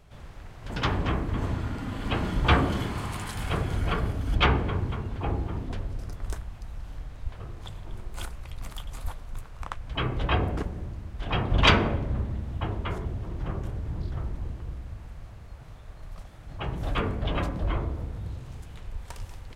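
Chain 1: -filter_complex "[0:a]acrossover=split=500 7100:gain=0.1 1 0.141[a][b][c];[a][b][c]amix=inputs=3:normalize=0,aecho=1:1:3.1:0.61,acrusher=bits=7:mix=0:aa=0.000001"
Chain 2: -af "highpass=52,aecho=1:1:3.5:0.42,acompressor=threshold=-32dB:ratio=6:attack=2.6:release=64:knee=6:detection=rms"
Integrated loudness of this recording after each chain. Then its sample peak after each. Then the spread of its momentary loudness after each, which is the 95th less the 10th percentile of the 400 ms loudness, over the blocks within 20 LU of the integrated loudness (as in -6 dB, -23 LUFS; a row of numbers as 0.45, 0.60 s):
-31.5, -39.0 LUFS; -3.0, -22.0 dBFS; 23, 9 LU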